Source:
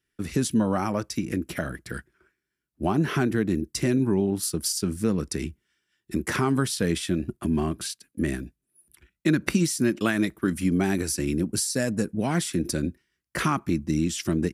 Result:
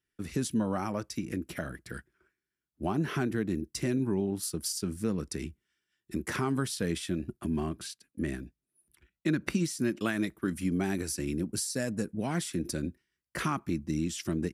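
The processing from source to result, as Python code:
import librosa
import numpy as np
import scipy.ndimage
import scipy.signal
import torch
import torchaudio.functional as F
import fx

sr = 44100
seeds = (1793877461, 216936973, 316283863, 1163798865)

y = fx.high_shelf(x, sr, hz=7200.0, db=-5.0, at=(7.69, 9.79))
y = F.gain(torch.from_numpy(y), -6.5).numpy()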